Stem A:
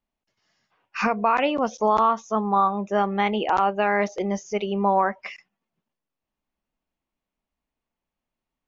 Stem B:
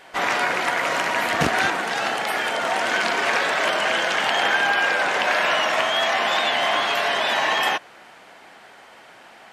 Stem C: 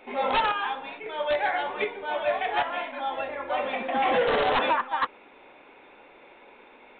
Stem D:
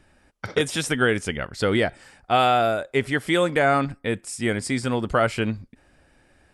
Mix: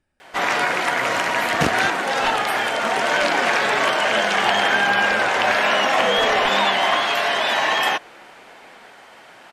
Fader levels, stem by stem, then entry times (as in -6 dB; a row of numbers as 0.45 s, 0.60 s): -8.5 dB, +1.5 dB, 0.0 dB, -16.0 dB; 1.80 s, 0.20 s, 1.90 s, 0.00 s